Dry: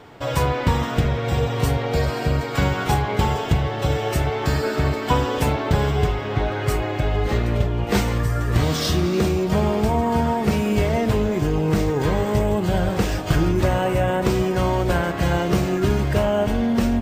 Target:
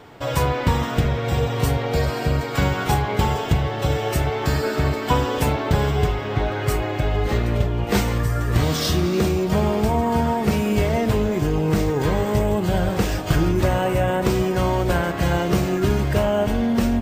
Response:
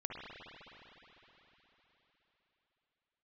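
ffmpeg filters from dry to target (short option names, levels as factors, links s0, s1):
-af "highshelf=f=11000:g=4.5"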